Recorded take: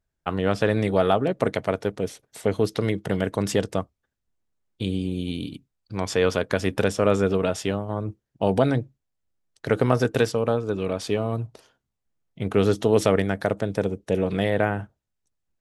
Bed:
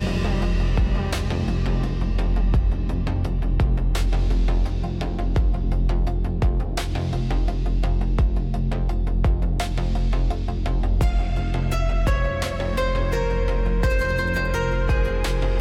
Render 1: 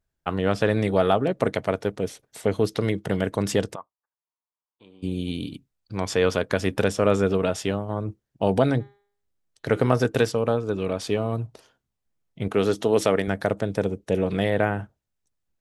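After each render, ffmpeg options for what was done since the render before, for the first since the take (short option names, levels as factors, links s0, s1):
-filter_complex "[0:a]asplit=3[s0][s1][s2];[s0]afade=t=out:st=3.74:d=0.02[s3];[s1]bandpass=f=1000:t=q:w=4.9,afade=t=in:st=3.74:d=0.02,afade=t=out:st=5.02:d=0.02[s4];[s2]afade=t=in:st=5.02:d=0.02[s5];[s3][s4][s5]amix=inputs=3:normalize=0,asplit=3[s6][s7][s8];[s6]afade=t=out:st=8.79:d=0.02[s9];[s7]bandreject=f=202.5:t=h:w=4,bandreject=f=405:t=h:w=4,bandreject=f=607.5:t=h:w=4,bandreject=f=810:t=h:w=4,bandreject=f=1012.5:t=h:w=4,bandreject=f=1215:t=h:w=4,bandreject=f=1417.5:t=h:w=4,bandreject=f=1620:t=h:w=4,bandreject=f=1822.5:t=h:w=4,bandreject=f=2025:t=h:w=4,bandreject=f=2227.5:t=h:w=4,bandreject=f=2430:t=h:w=4,bandreject=f=2632.5:t=h:w=4,bandreject=f=2835:t=h:w=4,bandreject=f=3037.5:t=h:w=4,bandreject=f=3240:t=h:w=4,bandreject=f=3442.5:t=h:w=4,bandreject=f=3645:t=h:w=4,bandreject=f=3847.5:t=h:w=4,bandreject=f=4050:t=h:w=4,bandreject=f=4252.5:t=h:w=4,afade=t=in:st=8.79:d=0.02,afade=t=out:st=9.87:d=0.02[s10];[s8]afade=t=in:st=9.87:d=0.02[s11];[s9][s10][s11]amix=inputs=3:normalize=0,asettb=1/sr,asplit=3[s12][s13][s14];[s12]atrim=end=12.484[s15];[s13]atrim=start=12.48:end=13.28,asetpts=PTS-STARTPTS,afade=t=in:d=0.004:c=qsin,afade=t=out:st=0.796:d=0.004:c=qsin,highpass=f=220:p=1[s16];[s14]atrim=start=13.276[s17];[s15][s16]acrossfade=d=0.004:c1=hsin:c2=qsin[s18];[s18][s17]acrossfade=d=0.004:c1=qsin:c2=hsin"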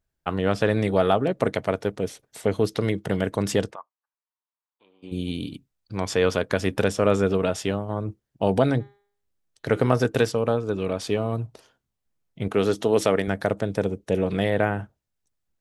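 -filter_complex "[0:a]asplit=3[s0][s1][s2];[s0]afade=t=out:st=3.7:d=0.02[s3];[s1]bandpass=f=1200:t=q:w=0.86,afade=t=in:st=3.7:d=0.02,afade=t=out:st=5.11:d=0.02[s4];[s2]afade=t=in:st=5.11:d=0.02[s5];[s3][s4][s5]amix=inputs=3:normalize=0"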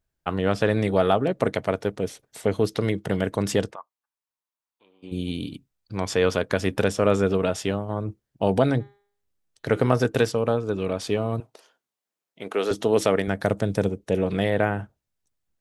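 -filter_complex "[0:a]asettb=1/sr,asplit=3[s0][s1][s2];[s0]atrim=end=11.404[s3];[s1]atrim=start=11.4:end=12.71,asetpts=PTS-STARTPTS,afade=t=in:d=0.004:c=qsin,afade=t=out:st=1.306:d=0.004:c=qsin,highpass=390[s4];[s2]atrim=start=12.706[s5];[s3][s4]acrossfade=d=0.004:c1=hsin:c2=qsin[s6];[s6][s5]acrossfade=d=0.004:c1=qsin:c2=hsin,asettb=1/sr,asplit=3[s7][s8][s9];[s7]atrim=end=13.444[s10];[s8]atrim=start=13.44:end=13.89,asetpts=PTS-STARTPTS,afade=t=in:d=0.004:c=qsin,afade=t=out:st=0.446:d=0.004:c=qsin,bass=f=250:g=4,treble=f=4000:g=5[s11];[s9]atrim=start=13.886[s12];[s10][s11]acrossfade=d=0.004:c1=hsin:c2=qsin[s13];[s13][s12]acrossfade=d=0.004:c1=qsin:c2=hsin"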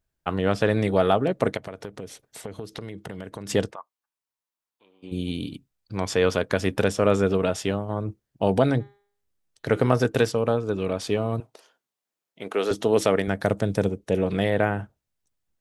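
-filter_complex "[0:a]asplit=3[s0][s1][s2];[s0]afade=t=out:st=1.56:d=0.02[s3];[s1]acompressor=threshold=0.0251:ratio=6:attack=3.2:release=140:knee=1:detection=peak,afade=t=in:st=1.56:d=0.02,afade=t=out:st=3.49:d=0.02[s4];[s2]afade=t=in:st=3.49:d=0.02[s5];[s3][s4][s5]amix=inputs=3:normalize=0"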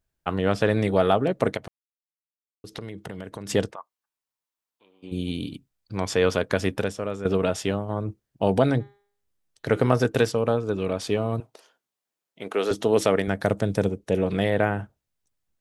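-filter_complex "[0:a]asplit=4[s0][s1][s2][s3];[s0]atrim=end=1.68,asetpts=PTS-STARTPTS,afade=t=out:st=1.676:d=0.004:c=hsin[s4];[s1]atrim=start=1.68:end=2.64,asetpts=PTS-STARTPTS,volume=0[s5];[s2]atrim=start=2.64:end=7.25,asetpts=PTS-STARTPTS,afade=t=in:d=0.004:c=hsin,afade=t=out:st=4.01:d=0.6:c=qua:silence=0.251189[s6];[s3]atrim=start=7.25,asetpts=PTS-STARTPTS,afade=t=in:d=0.004:c=hsin:silence=0.251189[s7];[s4][s5][s6][s7]concat=n=4:v=0:a=1"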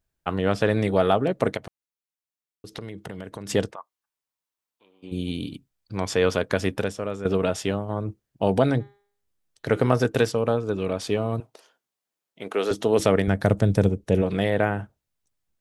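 -filter_complex "[0:a]asettb=1/sr,asplit=3[s0][s1][s2];[s0]atrim=end=12.994[s3];[s1]atrim=start=12.99:end=14.22,asetpts=PTS-STARTPTS,afade=t=in:d=0.004:c=qsin,afade=t=out:st=1.226:d=0.004:c=qsin,lowshelf=f=150:g=11[s4];[s2]atrim=start=14.216[s5];[s3][s4]acrossfade=d=0.004:c1=hsin:c2=qsin[s6];[s6][s5]acrossfade=d=0.004:c1=qsin:c2=hsin"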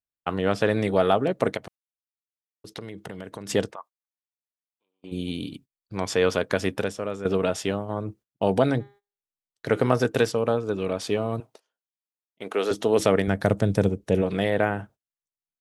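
-af "agate=range=0.1:threshold=0.00562:ratio=16:detection=peak,lowshelf=f=85:g=-9.5"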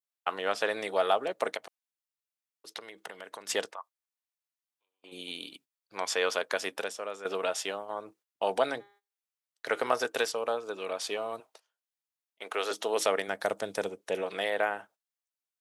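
-af "highpass=720,adynamicequalizer=threshold=0.00891:dfrequency=1700:dqfactor=0.75:tfrequency=1700:tqfactor=0.75:attack=5:release=100:ratio=0.375:range=2:mode=cutabove:tftype=bell"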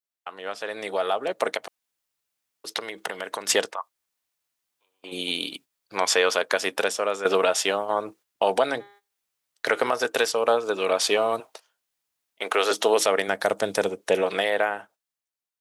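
-af "alimiter=limit=0.0944:level=0:latency=1:release=405,dynaudnorm=f=130:g=17:m=3.98"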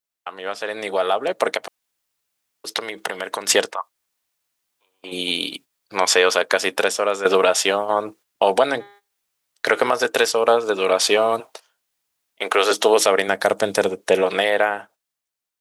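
-af "volume=1.78"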